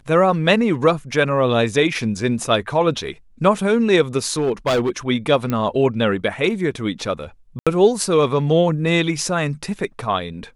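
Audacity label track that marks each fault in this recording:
4.320000	4.900000	clipped -14.5 dBFS
5.500000	5.500000	pop -10 dBFS
7.590000	7.670000	dropout 76 ms

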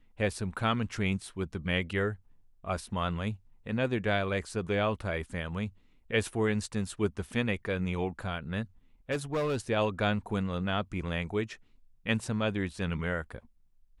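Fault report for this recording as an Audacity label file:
9.110000	9.570000	clipped -26 dBFS

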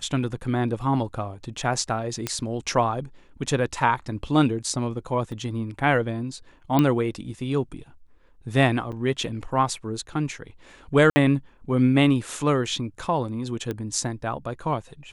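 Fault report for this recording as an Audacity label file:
2.270000	2.270000	pop -10 dBFS
5.320000	5.320000	dropout 2.7 ms
6.790000	6.790000	pop -8 dBFS
8.920000	8.930000	dropout 6.7 ms
11.100000	11.160000	dropout 60 ms
13.710000	13.710000	pop -17 dBFS

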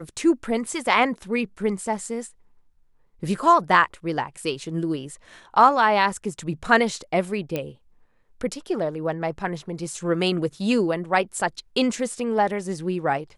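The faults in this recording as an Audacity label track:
0.660000	0.660000	dropout 3 ms
7.560000	7.560000	pop -13 dBFS

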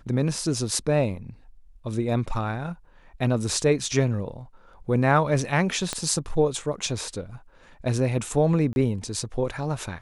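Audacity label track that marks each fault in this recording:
5.930000	5.930000	pop -12 dBFS
8.730000	8.760000	dropout 31 ms

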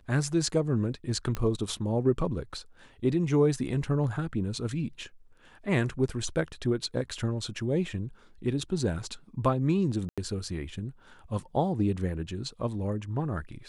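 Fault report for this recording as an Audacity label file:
1.350000	1.350000	pop -18 dBFS
10.090000	10.180000	dropout 86 ms

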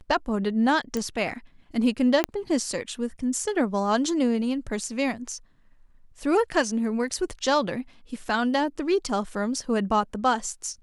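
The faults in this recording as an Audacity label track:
0.970000	0.970000	pop -15 dBFS
2.240000	2.240000	pop -8 dBFS

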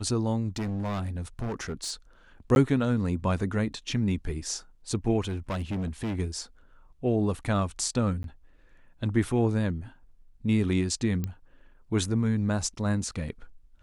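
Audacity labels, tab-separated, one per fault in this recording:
0.560000	1.920000	clipped -28 dBFS
2.550000	2.560000	dropout 11 ms
5.200000	6.200000	clipped -27.5 dBFS
8.230000	8.240000	dropout 12 ms
11.240000	11.240000	pop -18 dBFS

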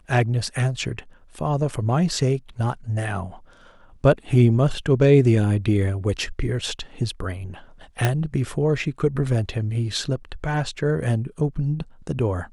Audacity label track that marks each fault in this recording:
8.050000	8.050000	pop -6 dBFS

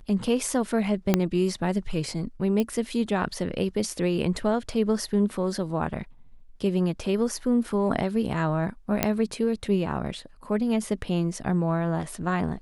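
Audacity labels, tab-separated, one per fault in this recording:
1.140000	1.140000	pop -6 dBFS
2.600000	2.600000	pop -14 dBFS
9.030000	9.030000	pop -5 dBFS

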